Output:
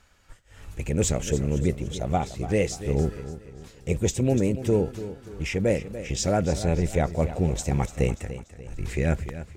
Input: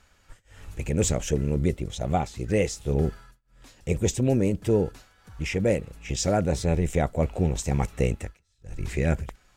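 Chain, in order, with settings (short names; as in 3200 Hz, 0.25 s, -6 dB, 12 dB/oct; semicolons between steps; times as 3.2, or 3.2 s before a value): warbling echo 0.291 s, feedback 42%, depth 57 cents, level -13 dB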